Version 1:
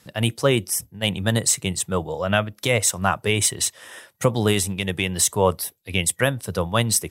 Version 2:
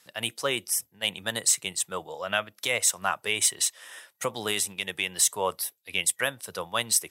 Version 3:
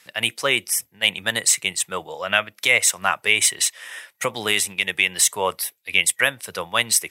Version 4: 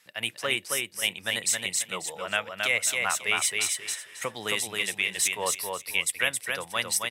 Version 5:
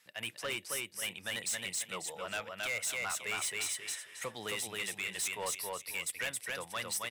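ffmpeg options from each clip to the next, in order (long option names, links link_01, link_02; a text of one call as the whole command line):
ffmpeg -i in.wav -af "highpass=frequency=1100:poles=1,volume=-2.5dB" out.wav
ffmpeg -i in.wav -af "equalizer=frequency=2200:width=1.7:gain=8,volume=4.5dB" out.wav
ffmpeg -i in.wav -af "aecho=1:1:270|540|810:0.668|0.154|0.0354,volume=-8.5dB" out.wav
ffmpeg -i in.wav -af "asoftclip=type=tanh:threshold=-25.5dB,volume=-5dB" out.wav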